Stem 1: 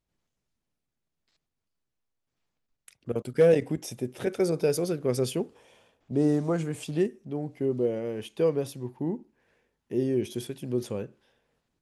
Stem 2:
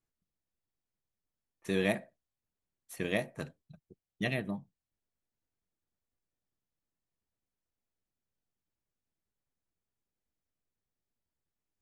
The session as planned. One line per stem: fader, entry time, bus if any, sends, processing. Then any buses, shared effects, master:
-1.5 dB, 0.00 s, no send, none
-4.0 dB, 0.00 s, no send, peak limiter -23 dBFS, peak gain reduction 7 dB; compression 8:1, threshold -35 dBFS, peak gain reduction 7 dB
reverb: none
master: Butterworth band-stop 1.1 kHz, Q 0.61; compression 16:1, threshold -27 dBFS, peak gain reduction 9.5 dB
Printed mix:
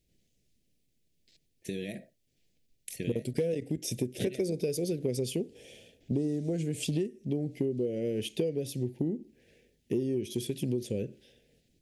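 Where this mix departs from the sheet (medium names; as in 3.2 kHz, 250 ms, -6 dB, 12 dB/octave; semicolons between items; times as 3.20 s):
stem 1 -1.5 dB -> +9.0 dB; stem 2 -4.0 dB -> +4.0 dB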